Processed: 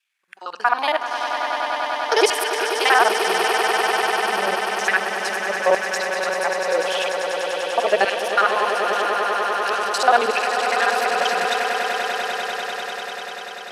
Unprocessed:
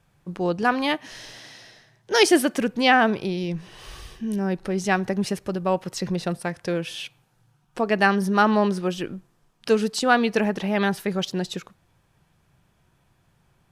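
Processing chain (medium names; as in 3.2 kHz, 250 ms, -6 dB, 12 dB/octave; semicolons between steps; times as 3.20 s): time reversed locally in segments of 46 ms; spectral noise reduction 9 dB; in parallel at 0 dB: peak limiter -14 dBFS, peak gain reduction 10 dB; on the sum: wow and flutter 33 cents; LFO high-pass saw down 0.87 Hz 460–2700 Hz; on a send: echo with a slow build-up 98 ms, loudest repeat 8, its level -9.5 dB; on the sum: trim -4 dB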